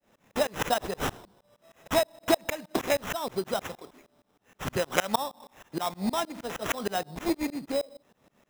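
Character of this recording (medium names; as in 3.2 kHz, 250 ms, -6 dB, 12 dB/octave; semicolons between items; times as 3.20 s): a quantiser's noise floor 12-bit, dither none; tremolo saw up 6.4 Hz, depth 100%; aliases and images of a low sample rate 4.5 kHz, jitter 0%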